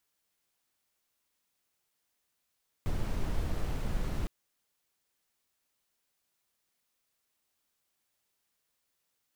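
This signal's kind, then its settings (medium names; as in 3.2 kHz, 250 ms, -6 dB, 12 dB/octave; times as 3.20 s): noise brown, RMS -30.5 dBFS 1.41 s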